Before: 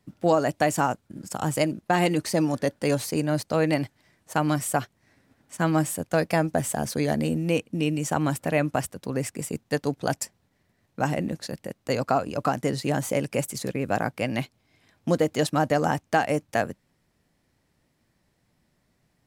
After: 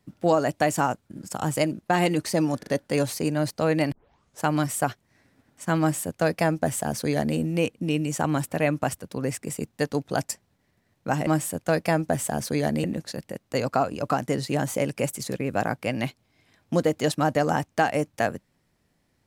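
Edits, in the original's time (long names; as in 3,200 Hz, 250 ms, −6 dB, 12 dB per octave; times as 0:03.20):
0:02.59: stutter 0.04 s, 3 plays
0:03.84: tape start 0.50 s
0:05.72–0:07.29: duplicate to 0:11.19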